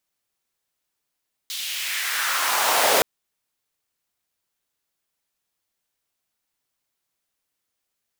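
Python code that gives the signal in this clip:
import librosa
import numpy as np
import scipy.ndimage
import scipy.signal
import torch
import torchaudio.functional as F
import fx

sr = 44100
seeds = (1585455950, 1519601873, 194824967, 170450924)

y = fx.riser_noise(sr, seeds[0], length_s=1.52, colour='pink', kind='highpass', start_hz=3700.0, end_hz=520.0, q=2.0, swell_db=12.0, law='exponential')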